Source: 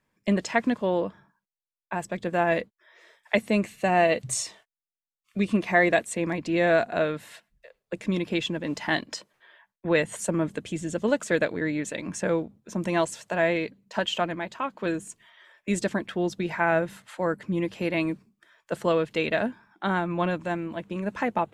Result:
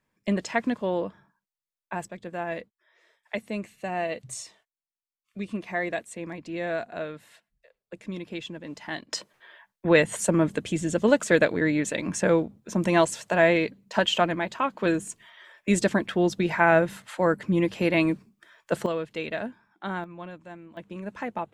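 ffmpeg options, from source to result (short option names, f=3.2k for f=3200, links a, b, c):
-af "asetnsamples=n=441:p=0,asendcmd='2.08 volume volume -8.5dB;9.13 volume volume 4dB;18.86 volume volume -6dB;20.04 volume volume -14dB;20.77 volume volume -6dB',volume=-2dB"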